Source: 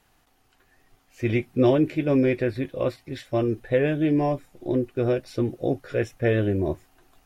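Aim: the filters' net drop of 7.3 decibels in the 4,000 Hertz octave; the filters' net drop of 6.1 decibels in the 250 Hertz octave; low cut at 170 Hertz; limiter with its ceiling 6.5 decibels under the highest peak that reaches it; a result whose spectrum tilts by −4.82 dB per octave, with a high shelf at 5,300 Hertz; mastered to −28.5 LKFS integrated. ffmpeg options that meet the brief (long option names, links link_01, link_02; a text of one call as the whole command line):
ffmpeg -i in.wav -af "highpass=170,equalizer=frequency=250:width_type=o:gain=-7.5,equalizer=frequency=4000:width_type=o:gain=-7,highshelf=frequency=5300:gain=-7.5,volume=1.5dB,alimiter=limit=-16.5dB:level=0:latency=1" out.wav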